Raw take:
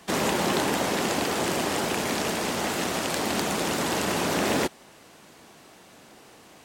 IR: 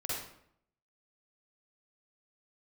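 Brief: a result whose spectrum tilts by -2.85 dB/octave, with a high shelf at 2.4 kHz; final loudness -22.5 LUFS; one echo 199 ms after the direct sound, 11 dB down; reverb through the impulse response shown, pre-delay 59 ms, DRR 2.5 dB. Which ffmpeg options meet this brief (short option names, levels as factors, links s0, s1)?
-filter_complex "[0:a]highshelf=f=2400:g=7.5,aecho=1:1:199:0.282,asplit=2[s0][s1];[1:a]atrim=start_sample=2205,adelay=59[s2];[s1][s2]afir=irnorm=-1:irlink=0,volume=0.501[s3];[s0][s3]amix=inputs=2:normalize=0,volume=0.794"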